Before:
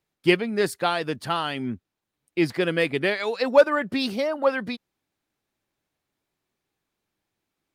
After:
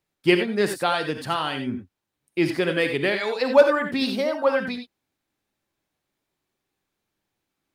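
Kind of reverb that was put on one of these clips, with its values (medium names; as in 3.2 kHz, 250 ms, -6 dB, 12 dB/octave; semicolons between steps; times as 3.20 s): gated-style reverb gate 110 ms rising, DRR 6 dB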